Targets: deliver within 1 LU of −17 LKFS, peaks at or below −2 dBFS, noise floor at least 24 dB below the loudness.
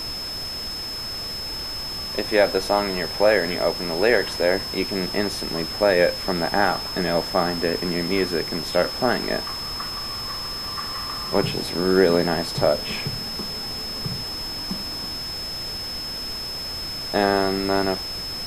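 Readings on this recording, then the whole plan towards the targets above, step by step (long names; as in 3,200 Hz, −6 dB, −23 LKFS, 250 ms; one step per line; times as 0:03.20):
interfering tone 5,200 Hz; level of the tone −29 dBFS; background noise floor −31 dBFS; target noise floor −48 dBFS; integrated loudness −23.5 LKFS; sample peak −3.5 dBFS; target loudness −17.0 LKFS
→ notch filter 5,200 Hz, Q 30
noise reduction from a noise print 17 dB
level +6.5 dB
brickwall limiter −2 dBFS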